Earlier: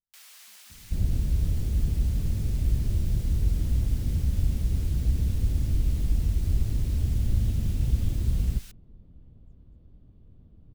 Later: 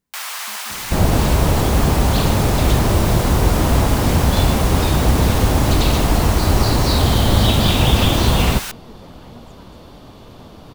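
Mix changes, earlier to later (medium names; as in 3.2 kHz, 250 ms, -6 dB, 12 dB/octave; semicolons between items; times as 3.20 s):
speech +11.0 dB; second sound: remove tape spacing loss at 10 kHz 45 dB; master: remove amplifier tone stack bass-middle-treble 10-0-1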